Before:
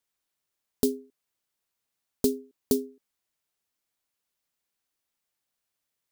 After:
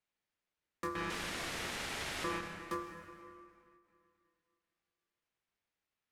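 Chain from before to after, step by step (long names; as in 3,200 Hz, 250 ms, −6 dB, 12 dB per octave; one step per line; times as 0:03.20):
0:00.95–0:02.41: linear delta modulator 64 kbit/s, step −26 dBFS
tube saturation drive 26 dB, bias 0.25
resonant band-pass 1,200 Hz, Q 0.78
dense smooth reverb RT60 2.5 s, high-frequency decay 0.7×, DRR 3.5 dB
ring modulation 760 Hz
every ending faded ahead of time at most 100 dB per second
level +3.5 dB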